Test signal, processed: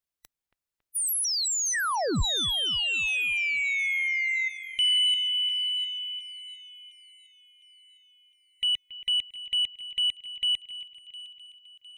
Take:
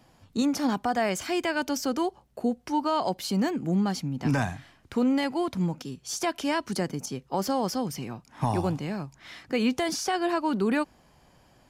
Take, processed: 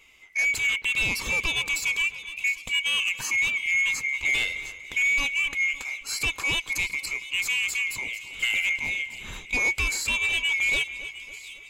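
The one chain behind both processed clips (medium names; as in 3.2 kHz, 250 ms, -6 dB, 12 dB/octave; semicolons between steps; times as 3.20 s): split-band scrambler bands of 2 kHz; bass shelf 87 Hz +11.5 dB; saturation -21.5 dBFS; two-band feedback delay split 2.9 kHz, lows 277 ms, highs 708 ms, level -13.5 dB; trim +3 dB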